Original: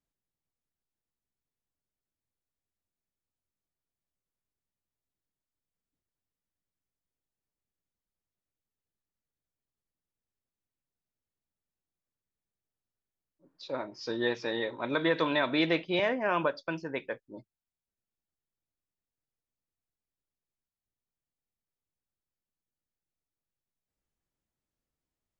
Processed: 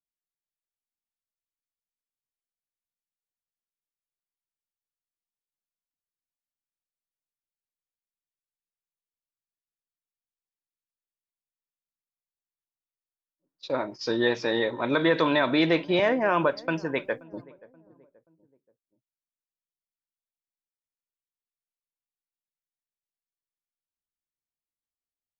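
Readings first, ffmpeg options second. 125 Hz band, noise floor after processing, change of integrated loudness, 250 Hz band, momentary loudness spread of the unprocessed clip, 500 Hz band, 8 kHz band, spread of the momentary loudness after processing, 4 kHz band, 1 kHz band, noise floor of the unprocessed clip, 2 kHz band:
+6.5 dB, under -85 dBFS, +5.0 dB, +6.0 dB, 11 LU, +6.0 dB, n/a, 10 LU, +4.0 dB, +5.5 dB, under -85 dBFS, +4.5 dB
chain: -filter_complex "[0:a]agate=range=-24dB:threshold=-46dB:ratio=16:detection=peak,adynamicequalizer=threshold=0.00562:dfrequency=2800:dqfactor=1.3:tfrequency=2800:tqfactor=1.3:attack=5:release=100:ratio=0.375:range=2:mode=cutabove:tftype=bell,asplit=2[a][b];[b]alimiter=limit=-23.5dB:level=0:latency=1:release=33,volume=-2.5dB[c];[a][c]amix=inputs=2:normalize=0,asplit=2[d][e];[e]adelay=529,lowpass=f=830:p=1,volume=-20.5dB,asplit=2[f][g];[g]adelay=529,lowpass=f=830:p=1,volume=0.45,asplit=2[h][i];[i]adelay=529,lowpass=f=830:p=1,volume=0.45[j];[d][f][h][j]amix=inputs=4:normalize=0,volume=2.5dB"

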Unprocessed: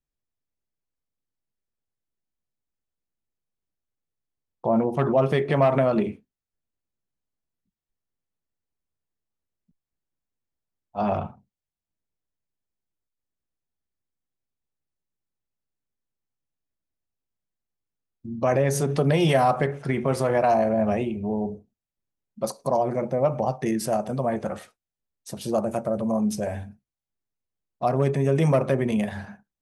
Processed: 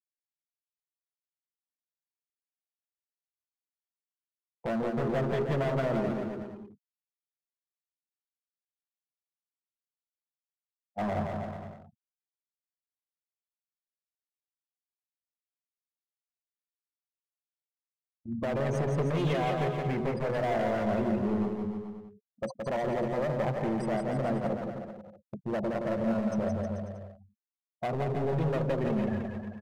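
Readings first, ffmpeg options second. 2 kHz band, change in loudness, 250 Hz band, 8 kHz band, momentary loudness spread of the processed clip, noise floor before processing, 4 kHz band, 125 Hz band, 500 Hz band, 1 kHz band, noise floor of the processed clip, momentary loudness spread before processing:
-5.0 dB, -7.0 dB, -5.0 dB, under -15 dB, 13 LU, under -85 dBFS, -7.5 dB, -6.0 dB, -7.0 dB, -8.0 dB, under -85 dBFS, 12 LU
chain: -filter_complex "[0:a]afftfilt=real='re*gte(hypot(re,im),0.0562)':imag='im*gte(hypot(re,im),0.0562)':win_size=1024:overlap=0.75,acrossover=split=4300[a][b];[b]acompressor=threshold=-52dB:ratio=4:attack=1:release=60[c];[a][c]amix=inputs=2:normalize=0,agate=range=-33dB:threshold=-33dB:ratio=3:detection=peak,equalizer=f=1.1k:w=1.2:g=-4.5,acompressor=threshold=-22dB:ratio=6,asoftclip=type=hard:threshold=-27dB,asplit=2[d][e];[e]aecho=0:1:170|314.5|437.3|541.7|630.5:0.631|0.398|0.251|0.158|0.1[f];[d][f]amix=inputs=2:normalize=0,volume=-1dB"

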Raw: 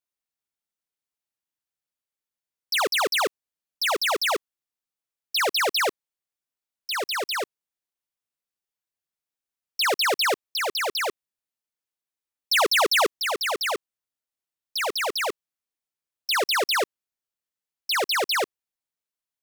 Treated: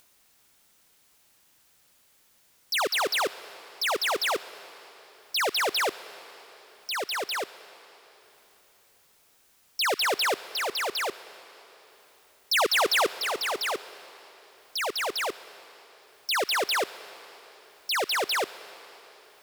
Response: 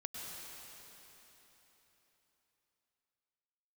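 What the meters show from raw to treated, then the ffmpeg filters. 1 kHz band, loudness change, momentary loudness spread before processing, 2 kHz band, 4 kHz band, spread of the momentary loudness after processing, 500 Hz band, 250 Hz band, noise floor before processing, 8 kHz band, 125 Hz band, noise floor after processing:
-2.5 dB, -3.0 dB, 9 LU, -3.0 dB, -3.0 dB, 20 LU, -3.0 dB, -2.5 dB, under -85 dBFS, -3.0 dB, n/a, -63 dBFS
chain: -filter_complex "[0:a]acompressor=mode=upward:threshold=-35dB:ratio=2.5,asplit=2[a][b];[1:a]atrim=start_sample=2205[c];[b][c]afir=irnorm=-1:irlink=0,volume=-12.5dB[d];[a][d]amix=inputs=2:normalize=0,volume=-4dB"

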